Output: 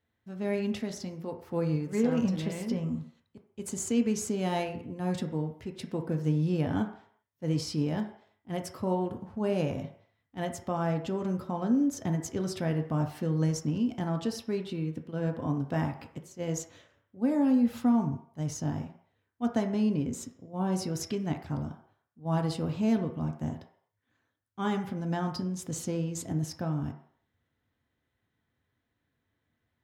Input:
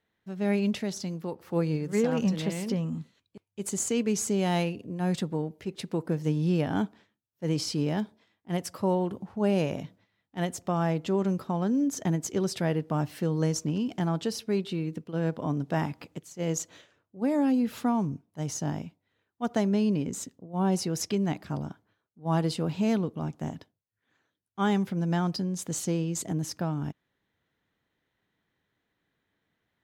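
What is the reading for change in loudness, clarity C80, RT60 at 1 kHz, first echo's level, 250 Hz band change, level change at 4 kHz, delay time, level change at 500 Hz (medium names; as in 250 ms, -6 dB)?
-2.0 dB, 12.5 dB, 0.65 s, no echo, -1.0 dB, -4.5 dB, no echo, -3.0 dB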